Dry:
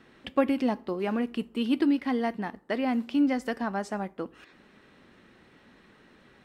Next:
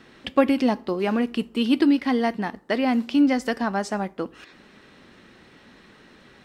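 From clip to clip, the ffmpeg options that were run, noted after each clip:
-af "equalizer=f=5.2k:w=0.91:g=5,volume=5.5dB"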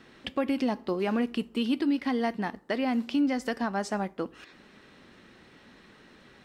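-af "alimiter=limit=-15.5dB:level=0:latency=1:release=186,volume=-3.5dB"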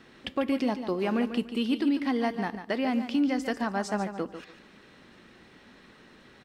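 -af "aecho=1:1:145|290|435:0.316|0.0791|0.0198"

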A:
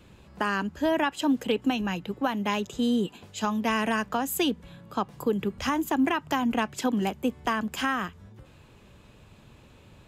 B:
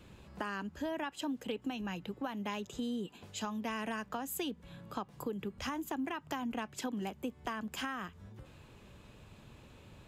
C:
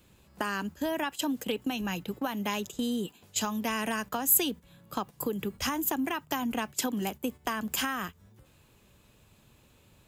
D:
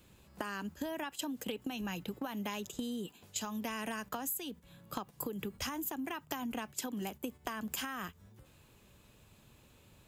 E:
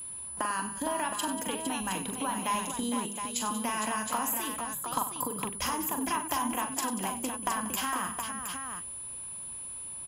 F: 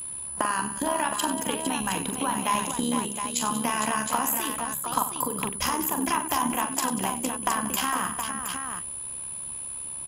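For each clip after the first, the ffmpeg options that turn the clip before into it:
-af "acompressor=threshold=-37dB:ratio=2.5,volume=-2.5dB"
-af "agate=range=-12dB:threshold=-45dB:ratio=16:detection=peak,aemphasis=mode=production:type=50fm,volume=6.5dB"
-af "acompressor=threshold=-34dB:ratio=12,volume=-1dB"
-af "equalizer=f=100:t=o:w=0.33:g=-9,equalizer=f=200:t=o:w=0.33:g=-4,equalizer=f=400:t=o:w=0.33:g=-6,equalizer=f=1k:t=o:w=0.33:g=11,aecho=1:1:42|96|187|460|717:0.422|0.237|0.168|0.422|0.447,aeval=exprs='val(0)+0.00794*sin(2*PI*10000*n/s)':c=same,volume=4dB"
-af "tremolo=f=71:d=0.571,volume=7.5dB"

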